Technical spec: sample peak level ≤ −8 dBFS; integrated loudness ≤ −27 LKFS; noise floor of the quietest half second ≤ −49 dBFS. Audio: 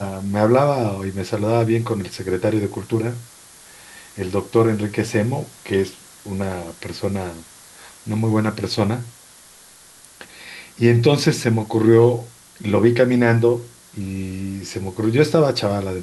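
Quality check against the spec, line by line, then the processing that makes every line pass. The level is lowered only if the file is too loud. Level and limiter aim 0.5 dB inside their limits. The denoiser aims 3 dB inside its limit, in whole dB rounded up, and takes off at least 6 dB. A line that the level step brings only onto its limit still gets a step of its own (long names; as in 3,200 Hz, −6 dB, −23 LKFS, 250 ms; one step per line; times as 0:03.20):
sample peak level −3.0 dBFS: out of spec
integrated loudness −20.0 LKFS: out of spec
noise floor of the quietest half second −47 dBFS: out of spec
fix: level −7.5 dB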